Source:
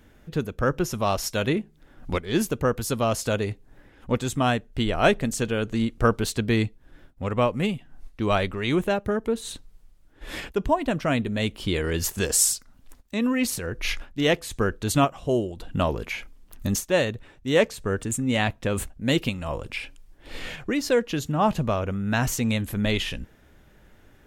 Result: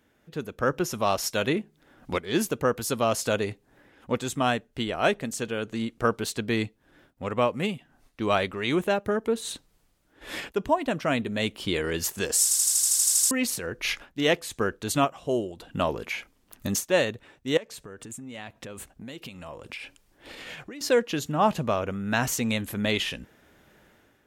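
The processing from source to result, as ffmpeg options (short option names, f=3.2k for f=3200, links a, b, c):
-filter_complex "[0:a]asettb=1/sr,asplit=3[a][b][c];[a]atrim=end=17.574[d];[b]atrim=start=17.57:end=20.81,asetpts=PTS-STARTPTS,afade=t=in:d=0.004:c=qsin,afade=t=out:st=3.236:d=0.004:c=qsin,acompressor=threshold=-35dB:ratio=16:attack=3.2:release=140:knee=1:detection=peak[e];[c]atrim=start=20.806[f];[d][e]acrossfade=d=0.004:c1=hsin:c2=qsin[g];[g][f]acrossfade=d=0.004:c1=qsin:c2=hsin,asplit=12[h][i][j][k][l][m][n][o][p][q][r][s];[h]atrim=end=12.512[t];[i]atrim=start=12.428:end=12.512[u];[j]atrim=start=12.428:end=12.512[v];[k]atrim=start=12.428:end=12.512[w];[l]atrim=start=12.428:end=12.512[x];[m]atrim=start=12.428:end=12.512[y];[n]atrim=start=12.428:end=12.512[z];[o]atrim=start=12.428:end=12.512[aa];[p]atrim=start=12.428:end=12.512[ab];[q]atrim=start=12.428:end=12.512[ac];[r]atrim=start=12.428:end=12.512[ad];[s]atrim=start=13.308[ae];[t][u]acrossfade=d=0.004:c1=hsin:c2=hsin[af];[af][v]acrossfade=d=0.004:c1=hsin:c2=hsin[ag];[ag][w]acrossfade=d=0.004:c1=hsin:c2=hsin[ah];[ah][x]acrossfade=d=0.004:c1=hsin:c2=hsin[ai];[ai][y]acrossfade=d=0.004:c1=hsin:c2=hsin[aj];[aj][z]acrossfade=d=0.004:c1=hsin:c2=hsin[ak];[ak][aa]acrossfade=d=0.004:c1=hsin:c2=hsin[al];[al][ab]acrossfade=d=0.004:c1=hsin:c2=hsin[am];[am][ac]acrossfade=d=0.004:c1=hsin:c2=hsin[an];[an][ad]acrossfade=d=0.004:c1=hsin:c2=hsin[ao];[ao][ae]acrossfade=d=0.004:c1=hsin:c2=hsin,dynaudnorm=f=180:g=5:m=9.5dB,highpass=f=230:p=1,volume=-7.5dB"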